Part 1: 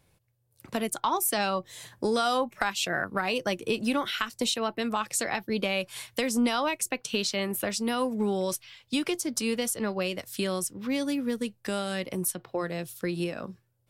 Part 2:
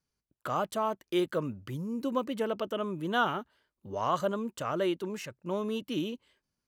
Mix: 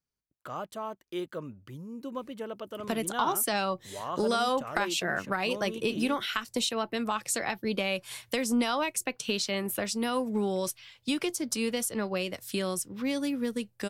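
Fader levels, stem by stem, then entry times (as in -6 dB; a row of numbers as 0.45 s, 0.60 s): -1.5 dB, -6.5 dB; 2.15 s, 0.00 s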